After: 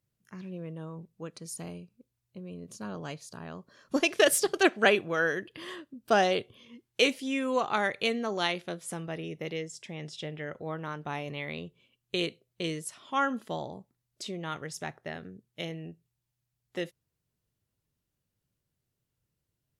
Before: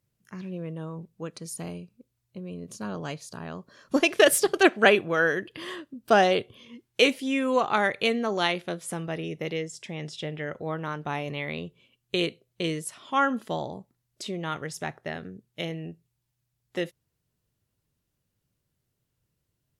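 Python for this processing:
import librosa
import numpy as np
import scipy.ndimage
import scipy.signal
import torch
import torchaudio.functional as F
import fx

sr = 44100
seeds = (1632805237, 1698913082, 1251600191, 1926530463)

y = fx.dynamic_eq(x, sr, hz=5900.0, q=0.95, threshold_db=-43.0, ratio=4.0, max_db=4)
y = F.gain(torch.from_numpy(y), -4.5).numpy()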